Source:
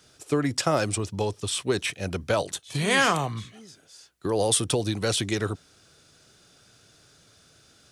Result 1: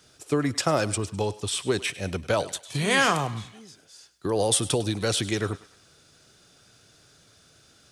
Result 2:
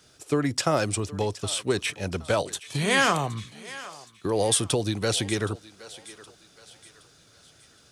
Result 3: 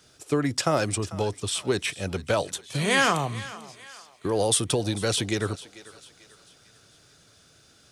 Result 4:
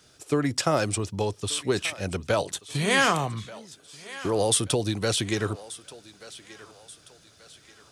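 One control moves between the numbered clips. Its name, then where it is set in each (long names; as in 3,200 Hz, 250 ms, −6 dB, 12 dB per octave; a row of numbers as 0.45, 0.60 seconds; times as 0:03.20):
feedback echo with a high-pass in the loop, delay time: 102, 769, 444, 1,182 milliseconds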